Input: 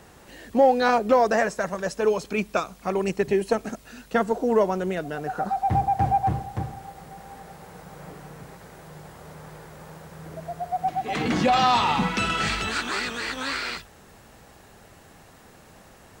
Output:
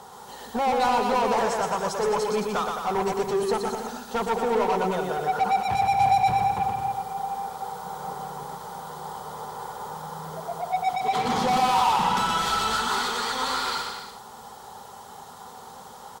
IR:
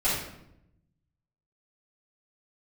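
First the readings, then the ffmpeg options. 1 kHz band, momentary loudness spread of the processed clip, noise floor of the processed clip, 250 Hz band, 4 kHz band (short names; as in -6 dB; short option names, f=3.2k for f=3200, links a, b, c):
+2.5 dB, 21 LU, -44 dBFS, -4.5 dB, +1.0 dB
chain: -filter_complex "[0:a]volume=16.5dB,asoftclip=hard,volume=-16.5dB,superequalizer=6b=0.282:8b=0.562:9b=2:11b=0.316:12b=0.251,asplit=2[a][b];[b]highpass=f=720:p=1,volume=24dB,asoftclip=type=tanh:threshold=-8.5dB[c];[a][c]amix=inputs=2:normalize=0,lowpass=f=1.4k:p=1,volume=-6dB,crystalizer=i=2:c=0,aecho=1:1:120|216|292.8|354.2|403.4:0.631|0.398|0.251|0.158|0.1,volume=-8dB" -ar 48000 -c:a libmp3lame -b:a 80k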